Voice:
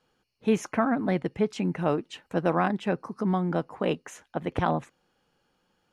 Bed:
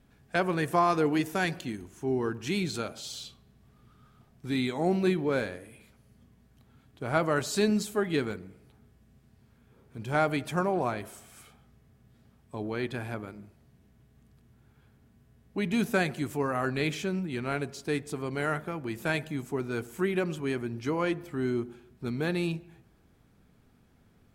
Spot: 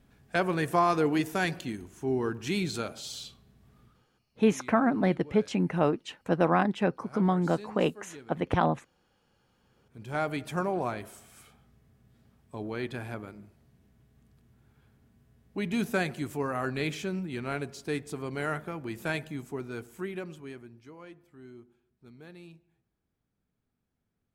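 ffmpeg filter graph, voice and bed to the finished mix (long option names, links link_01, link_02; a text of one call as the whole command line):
ffmpeg -i stem1.wav -i stem2.wav -filter_complex "[0:a]adelay=3950,volume=0.5dB[link_01];[1:a]volume=17dB,afade=type=out:start_time=3.82:duration=0.24:silence=0.112202,afade=type=in:start_time=9.24:duration=1.37:silence=0.141254,afade=type=out:start_time=19.02:duration=1.86:silence=0.133352[link_02];[link_01][link_02]amix=inputs=2:normalize=0" out.wav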